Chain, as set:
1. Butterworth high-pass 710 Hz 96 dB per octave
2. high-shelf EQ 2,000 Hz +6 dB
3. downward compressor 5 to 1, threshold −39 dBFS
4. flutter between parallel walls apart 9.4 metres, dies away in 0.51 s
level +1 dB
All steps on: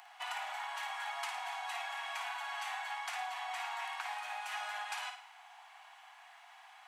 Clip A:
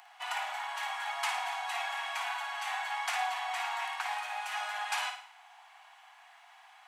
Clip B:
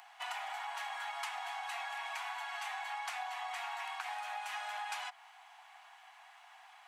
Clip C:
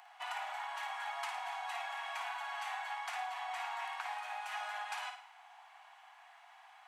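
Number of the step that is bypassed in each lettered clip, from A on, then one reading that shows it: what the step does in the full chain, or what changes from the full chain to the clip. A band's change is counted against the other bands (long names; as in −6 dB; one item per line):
3, average gain reduction 3.5 dB
4, echo-to-direct ratio −5.5 dB to none audible
2, 8 kHz band −3.5 dB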